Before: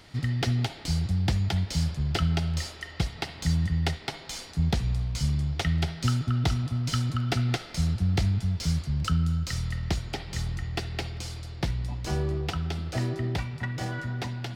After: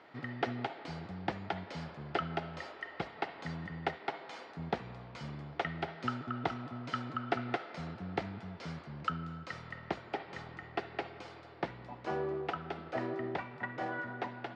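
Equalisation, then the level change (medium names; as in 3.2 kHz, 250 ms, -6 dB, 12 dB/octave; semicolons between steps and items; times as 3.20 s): high-pass 330 Hz 12 dB/octave; low-pass 1.5 kHz 12 dB/octave; bass shelf 420 Hz -4 dB; +2.0 dB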